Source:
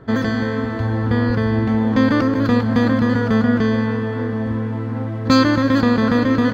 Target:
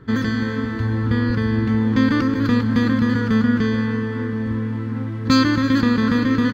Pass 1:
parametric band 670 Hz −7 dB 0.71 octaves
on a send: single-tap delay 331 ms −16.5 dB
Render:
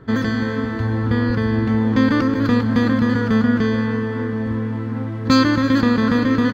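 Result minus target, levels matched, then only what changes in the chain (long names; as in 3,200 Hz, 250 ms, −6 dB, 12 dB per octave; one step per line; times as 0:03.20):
500 Hz band +2.5 dB
change: parametric band 670 Hz −16.5 dB 0.71 octaves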